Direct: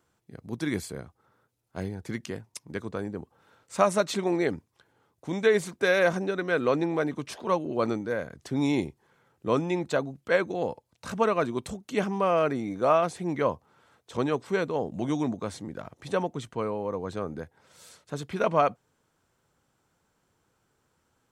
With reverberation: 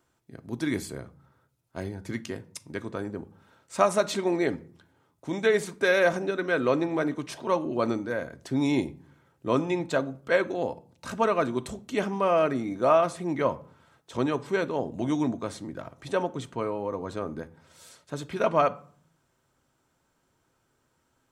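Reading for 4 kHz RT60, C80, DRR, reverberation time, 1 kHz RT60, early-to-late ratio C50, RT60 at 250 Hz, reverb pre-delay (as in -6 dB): 0.35 s, 24.0 dB, 9.5 dB, 0.50 s, 0.45 s, 20.0 dB, 0.75 s, 3 ms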